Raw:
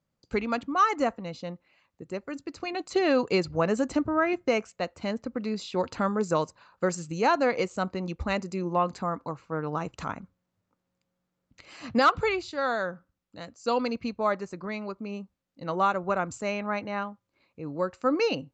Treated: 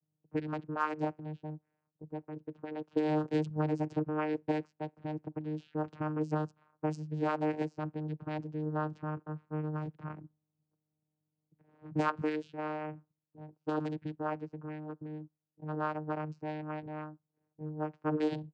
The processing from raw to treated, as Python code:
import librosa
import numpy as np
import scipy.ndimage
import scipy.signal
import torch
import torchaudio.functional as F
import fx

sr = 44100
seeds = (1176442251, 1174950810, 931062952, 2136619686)

y = fx.vocoder(x, sr, bands=8, carrier='saw', carrier_hz=153.0)
y = fx.env_lowpass(y, sr, base_hz=770.0, full_db=-22.5)
y = y * librosa.db_to_amplitude(-6.5)